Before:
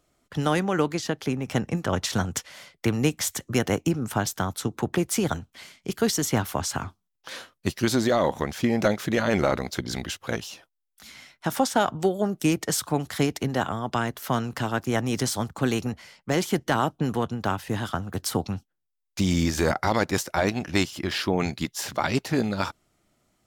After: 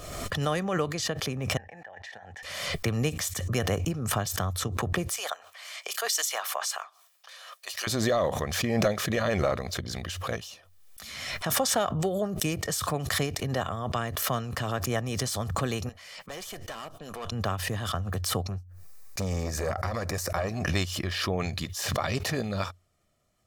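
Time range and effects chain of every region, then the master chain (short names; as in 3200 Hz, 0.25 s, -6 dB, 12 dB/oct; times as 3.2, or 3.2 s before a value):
1.57–2.43 double band-pass 1200 Hz, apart 1.1 oct + negative-ratio compressor -41 dBFS
5.16–7.87 HPF 670 Hz 24 dB/oct + three-band expander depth 70%
15.89–17.32 HPF 630 Hz 6 dB/oct + tube stage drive 29 dB, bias 0.65
18.43–20.66 bell 3200 Hz -12 dB 0.48 oct + core saturation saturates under 690 Hz
whole clip: bell 90 Hz +8 dB 0.21 oct; comb 1.7 ms, depth 46%; backwards sustainer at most 37 dB/s; gain -5.5 dB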